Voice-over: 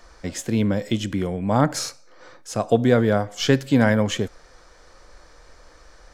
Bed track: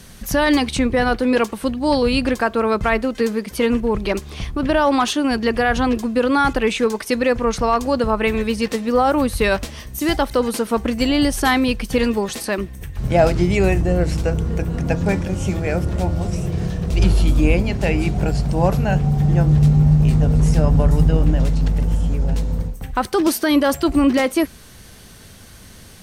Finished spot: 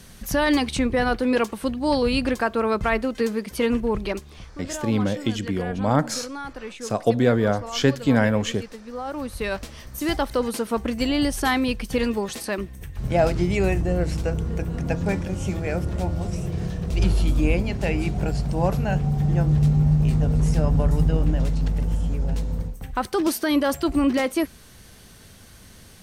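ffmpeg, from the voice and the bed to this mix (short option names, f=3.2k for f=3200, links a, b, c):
-filter_complex "[0:a]adelay=4350,volume=-1.5dB[a];[1:a]volume=8.5dB,afade=t=out:st=3.95:d=0.52:silence=0.211349,afade=t=in:st=8.93:d=1.18:silence=0.237137[b];[a][b]amix=inputs=2:normalize=0"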